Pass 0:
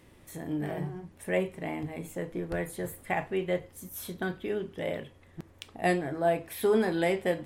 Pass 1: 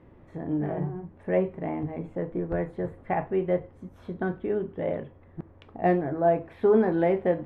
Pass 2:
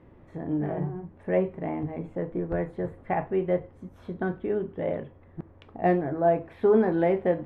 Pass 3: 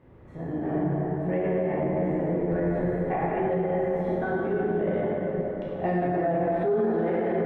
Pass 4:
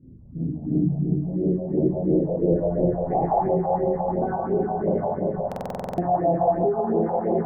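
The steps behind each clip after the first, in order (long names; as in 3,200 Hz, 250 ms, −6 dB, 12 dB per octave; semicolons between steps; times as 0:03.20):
low-pass filter 1,200 Hz 12 dB per octave; level +4.5 dB
no processing that can be heard
dense smooth reverb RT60 4.5 s, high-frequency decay 0.5×, DRR −8 dB; brickwall limiter −14.5 dBFS, peak gain reduction 12 dB; level −3.5 dB
low-pass filter sweep 240 Hz → 890 Hz, 0:01.08–0:03.48; all-pass phaser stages 4, 2.9 Hz, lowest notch 290–1,700 Hz; buffer that repeats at 0:05.47, samples 2,048, times 10; level +3.5 dB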